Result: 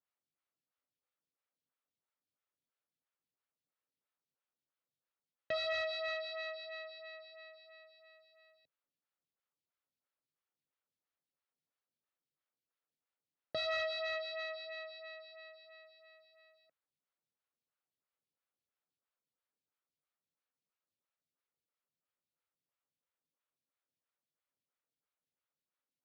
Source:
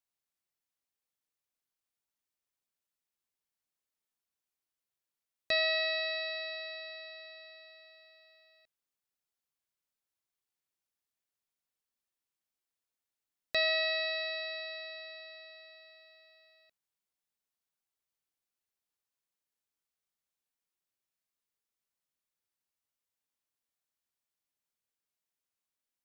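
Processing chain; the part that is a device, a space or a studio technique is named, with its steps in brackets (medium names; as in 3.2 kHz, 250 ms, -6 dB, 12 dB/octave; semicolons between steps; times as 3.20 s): vibe pedal into a guitar amplifier (lamp-driven phase shifter 3 Hz; valve stage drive 33 dB, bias 0.4; cabinet simulation 78–4500 Hz, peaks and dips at 94 Hz +8 dB, 150 Hz +9 dB, 270 Hz +4 dB, 530 Hz +5 dB, 1.3 kHz +5 dB); trim +1 dB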